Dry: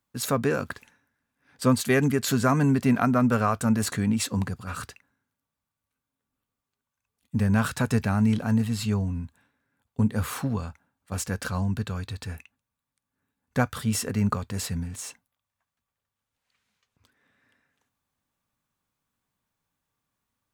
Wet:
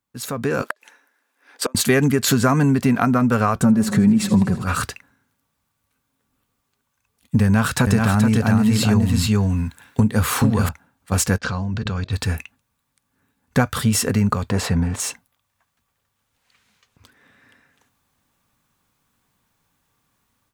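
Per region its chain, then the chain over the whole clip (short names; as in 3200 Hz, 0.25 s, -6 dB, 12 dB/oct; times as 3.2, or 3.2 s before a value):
0.62–1.75 HPF 350 Hz 24 dB/oct + flipped gate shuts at -20 dBFS, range -34 dB
3.55–4.63 tilt shelf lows +5.5 dB, about 820 Hz + comb 5.3 ms, depth 54% + warbling echo 80 ms, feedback 68%, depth 101 cents, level -17 dB
7.44–10.69 echo 0.428 s -3 dB + mismatched tape noise reduction encoder only
11.38–12.13 LPF 6200 Hz 24 dB/oct + de-hum 52.26 Hz, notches 12 + level quantiser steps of 18 dB
14.5–15 LPF 3400 Hz 6 dB/oct + bell 750 Hz +8.5 dB 2.3 oct
whole clip: compressor 4:1, threshold -25 dBFS; notch 610 Hz, Q 20; AGC gain up to 15 dB; gain -2 dB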